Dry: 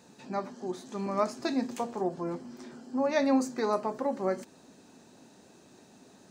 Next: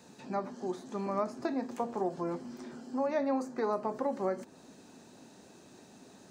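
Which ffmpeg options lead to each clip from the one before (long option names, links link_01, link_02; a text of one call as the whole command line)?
ffmpeg -i in.wav -filter_complex "[0:a]acrossover=split=390|1700[link_01][link_02][link_03];[link_01]acompressor=threshold=-38dB:ratio=4[link_04];[link_02]acompressor=threshold=-31dB:ratio=4[link_05];[link_03]acompressor=threshold=-57dB:ratio=4[link_06];[link_04][link_05][link_06]amix=inputs=3:normalize=0,volume=1dB" out.wav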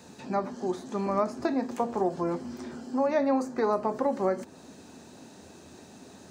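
ffmpeg -i in.wav -af "equalizer=frequency=83:width=5.3:gain=12.5,volume=5.5dB" out.wav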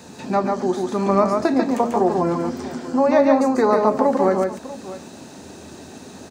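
ffmpeg -i in.wav -af "aecho=1:1:142|642:0.668|0.158,volume=8.5dB" out.wav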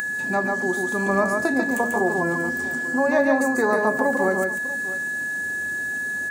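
ffmpeg -i in.wav -af "aeval=exprs='val(0)+0.1*sin(2*PI*1700*n/s)':channel_layout=same,aexciter=amount=5.7:drive=5:freq=7300,acompressor=mode=upward:threshold=-28dB:ratio=2.5,volume=-4.5dB" out.wav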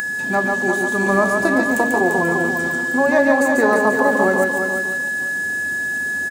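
ffmpeg -i in.wav -filter_complex "[0:a]asplit=2[link_01][link_02];[link_02]aeval=exprs='sgn(val(0))*max(abs(val(0))-0.0158,0)':channel_layout=same,volume=-4dB[link_03];[link_01][link_03]amix=inputs=2:normalize=0,aecho=1:1:344:0.473" out.wav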